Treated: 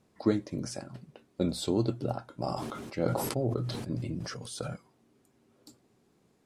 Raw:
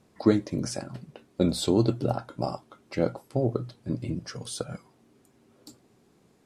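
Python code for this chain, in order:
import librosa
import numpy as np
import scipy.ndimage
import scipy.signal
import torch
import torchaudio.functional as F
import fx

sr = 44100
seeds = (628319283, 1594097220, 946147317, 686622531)

y = fx.sustainer(x, sr, db_per_s=28.0, at=(2.35, 4.74))
y = y * librosa.db_to_amplitude(-5.5)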